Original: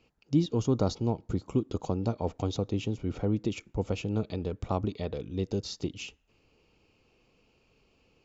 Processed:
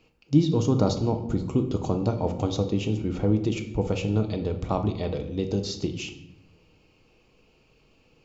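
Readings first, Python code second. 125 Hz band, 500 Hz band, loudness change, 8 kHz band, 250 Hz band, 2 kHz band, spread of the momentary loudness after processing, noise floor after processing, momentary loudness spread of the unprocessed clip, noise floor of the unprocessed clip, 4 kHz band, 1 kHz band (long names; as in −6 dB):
+5.5 dB, +5.0 dB, +5.5 dB, can't be measured, +5.5 dB, +5.0 dB, 7 LU, −62 dBFS, 7 LU, −69 dBFS, +5.0 dB, +5.0 dB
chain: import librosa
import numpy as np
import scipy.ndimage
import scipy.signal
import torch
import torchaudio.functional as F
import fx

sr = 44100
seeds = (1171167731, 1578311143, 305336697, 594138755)

y = fx.room_shoebox(x, sr, seeds[0], volume_m3=250.0, walls='mixed', distance_m=0.55)
y = y * 10.0 ** (4.0 / 20.0)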